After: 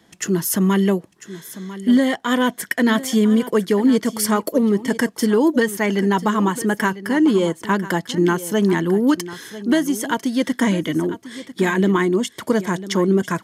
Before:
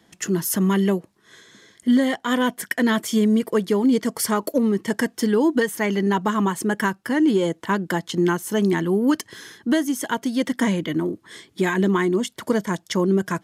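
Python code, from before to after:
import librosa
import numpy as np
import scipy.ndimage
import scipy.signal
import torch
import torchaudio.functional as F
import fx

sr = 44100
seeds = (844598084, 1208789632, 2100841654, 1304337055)

y = x + 10.0 ** (-15.0 / 20.0) * np.pad(x, (int(997 * sr / 1000.0), 0))[:len(x)]
y = F.gain(torch.from_numpy(y), 2.5).numpy()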